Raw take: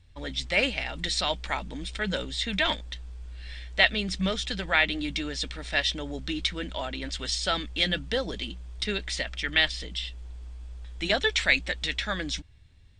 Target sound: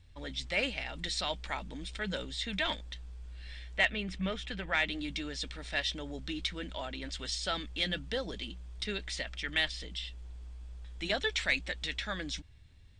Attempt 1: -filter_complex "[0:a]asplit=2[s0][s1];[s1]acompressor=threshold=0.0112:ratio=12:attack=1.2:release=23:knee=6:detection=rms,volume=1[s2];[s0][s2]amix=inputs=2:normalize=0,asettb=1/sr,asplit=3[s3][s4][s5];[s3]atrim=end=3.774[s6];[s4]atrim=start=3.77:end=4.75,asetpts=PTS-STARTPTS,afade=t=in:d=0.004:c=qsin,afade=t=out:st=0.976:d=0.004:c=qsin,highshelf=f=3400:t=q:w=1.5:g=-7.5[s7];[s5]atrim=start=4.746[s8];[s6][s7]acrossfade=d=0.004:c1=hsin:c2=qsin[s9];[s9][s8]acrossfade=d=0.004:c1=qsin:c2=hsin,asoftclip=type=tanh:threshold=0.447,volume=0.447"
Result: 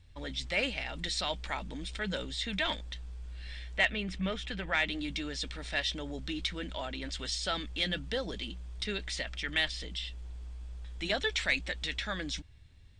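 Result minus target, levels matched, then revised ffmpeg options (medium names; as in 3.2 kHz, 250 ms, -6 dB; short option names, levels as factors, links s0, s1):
compression: peak gain reduction -10 dB
-filter_complex "[0:a]asplit=2[s0][s1];[s1]acompressor=threshold=0.00316:ratio=12:attack=1.2:release=23:knee=6:detection=rms,volume=1[s2];[s0][s2]amix=inputs=2:normalize=0,asettb=1/sr,asplit=3[s3][s4][s5];[s3]atrim=end=3.774[s6];[s4]atrim=start=3.77:end=4.75,asetpts=PTS-STARTPTS,afade=t=in:d=0.004:c=qsin,afade=t=out:st=0.976:d=0.004:c=qsin,highshelf=f=3400:t=q:w=1.5:g=-7.5[s7];[s5]atrim=start=4.746[s8];[s6][s7]acrossfade=d=0.004:c1=hsin:c2=qsin[s9];[s9][s8]acrossfade=d=0.004:c1=qsin:c2=hsin,asoftclip=type=tanh:threshold=0.447,volume=0.447"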